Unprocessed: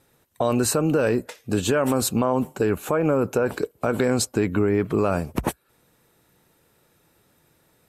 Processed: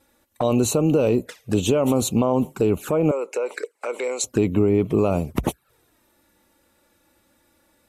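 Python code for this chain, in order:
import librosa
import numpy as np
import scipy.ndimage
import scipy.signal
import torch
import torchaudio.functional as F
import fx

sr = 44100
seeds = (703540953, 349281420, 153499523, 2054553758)

y = fx.env_flanger(x, sr, rest_ms=3.6, full_db=-20.0)
y = fx.cabinet(y, sr, low_hz=480.0, low_slope=24, high_hz=9800.0, hz=(700.0, 2100.0, 3300.0, 7900.0), db=(-10, 8, -6, 4), at=(3.11, 4.24))
y = y * librosa.db_to_amplitude(3.0)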